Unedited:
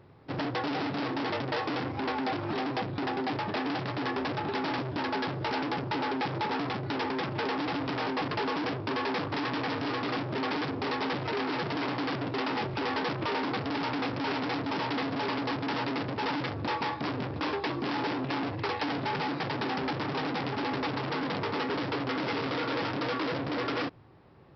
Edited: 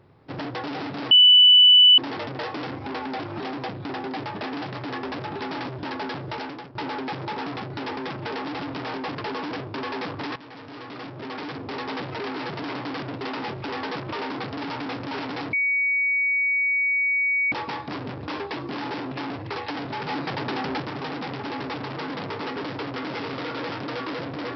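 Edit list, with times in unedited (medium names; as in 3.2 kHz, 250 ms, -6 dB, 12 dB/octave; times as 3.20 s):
1.11 s: add tone 2.98 kHz -9.5 dBFS 0.87 s
5.43–5.88 s: fade out, to -15.5 dB
9.49–11.07 s: fade in, from -14.5 dB
14.66–16.65 s: bleep 2.25 kHz -19.5 dBFS
19.22–19.95 s: gain +3 dB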